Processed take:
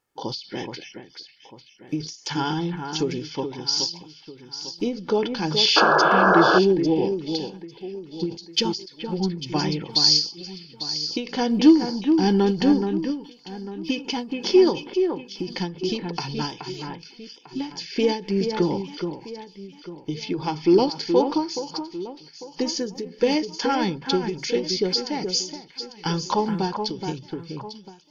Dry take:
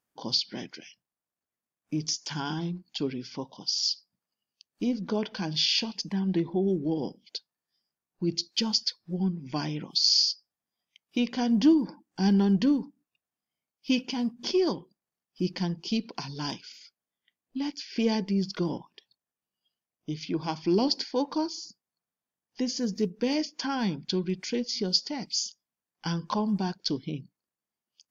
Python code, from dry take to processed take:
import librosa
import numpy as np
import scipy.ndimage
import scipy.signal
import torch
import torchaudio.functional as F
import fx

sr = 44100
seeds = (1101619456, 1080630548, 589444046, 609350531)

y = fx.high_shelf(x, sr, hz=6000.0, db=-6.0)
y = y + 0.52 * np.pad(y, (int(2.3 * sr / 1000.0), 0))[:len(y)]
y = fx.echo_alternate(y, sr, ms=424, hz=2500.0, feedback_pct=59, wet_db=-6.5)
y = fx.spec_paint(y, sr, seeds[0], shape='noise', start_s=5.76, length_s=0.83, low_hz=300.0, high_hz=1700.0, level_db=-24.0)
y = fx.end_taper(y, sr, db_per_s=140.0)
y = y * 10.0 ** (7.0 / 20.0)